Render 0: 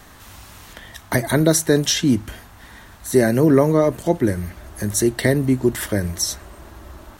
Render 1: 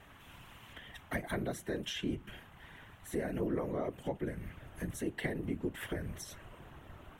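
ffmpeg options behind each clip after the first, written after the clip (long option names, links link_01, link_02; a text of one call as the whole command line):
ffmpeg -i in.wav -af "acompressor=threshold=-24dB:ratio=2.5,highshelf=frequency=3700:width_type=q:width=3:gain=-7,afftfilt=real='hypot(re,im)*cos(2*PI*random(0))':imag='hypot(re,im)*sin(2*PI*random(1))':win_size=512:overlap=0.75,volume=-6dB" out.wav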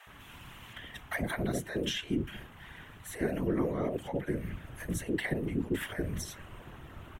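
ffmpeg -i in.wav -filter_complex "[0:a]acrossover=split=650[link_01][link_02];[link_01]adelay=70[link_03];[link_03][link_02]amix=inputs=2:normalize=0,volume=5dB" out.wav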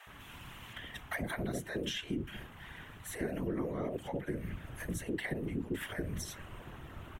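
ffmpeg -i in.wav -af "acompressor=threshold=-36dB:ratio=2" out.wav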